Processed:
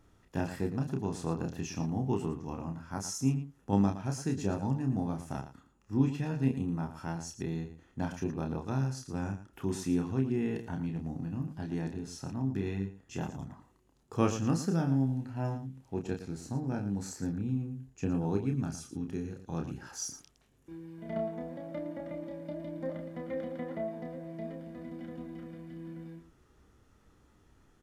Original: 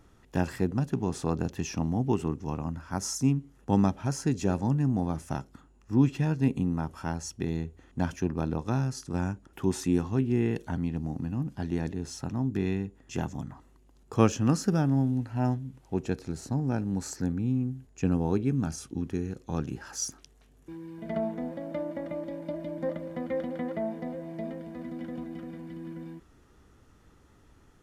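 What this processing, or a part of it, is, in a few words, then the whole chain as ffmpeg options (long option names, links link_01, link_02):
slapback doubling: -filter_complex "[0:a]asplit=3[link_01][link_02][link_03];[link_02]adelay=30,volume=-5dB[link_04];[link_03]adelay=114,volume=-11dB[link_05];[link_01][link_04][link_05]amix=inputs=3:normalize=0,volume=-6dB"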